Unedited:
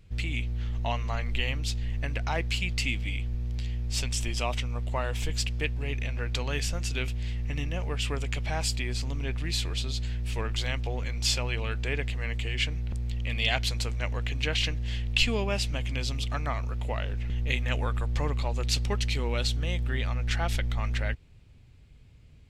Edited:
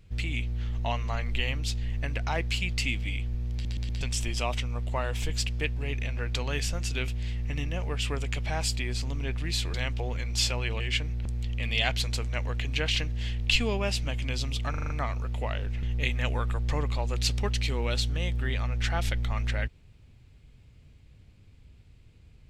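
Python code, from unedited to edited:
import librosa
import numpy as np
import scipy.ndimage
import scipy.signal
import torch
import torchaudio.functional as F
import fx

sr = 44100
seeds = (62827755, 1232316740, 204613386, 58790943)

y = fx.edit(x, sr, fx.stutter_over(start_s=3.53, slice_s=0.12, count=4),
    fx.cut(start_s=9.74, length_s=0.87),
    fx.cut(start_s=11.67, length_s=0.8),
    fx.stutter(start_s=16.37, slice_s=0.04, count=6), tone=tone)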